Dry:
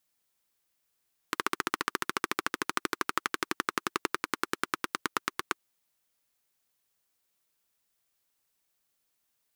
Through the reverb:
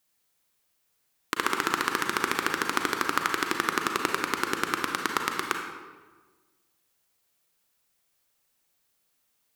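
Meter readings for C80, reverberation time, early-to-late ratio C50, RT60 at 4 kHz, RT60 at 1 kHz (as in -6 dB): 6.0 dB, 1.4 s, 4.0 dB, 0.90 s, 1.3 s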